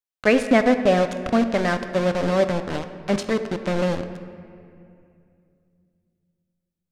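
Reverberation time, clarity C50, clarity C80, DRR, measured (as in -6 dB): 2.5 s, 10.0 dB, 11.0 dB, 8.0 dB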